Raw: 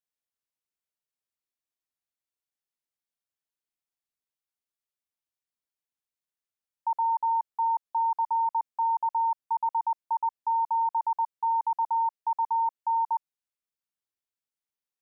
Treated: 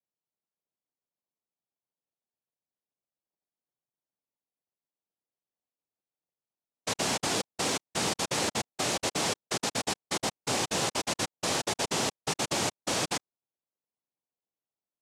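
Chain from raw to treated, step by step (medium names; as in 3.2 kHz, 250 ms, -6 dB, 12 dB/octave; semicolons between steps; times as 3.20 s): tilt EQ -5.5 dB/octave; noise-vocoded speech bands 2; trim -4.5 dB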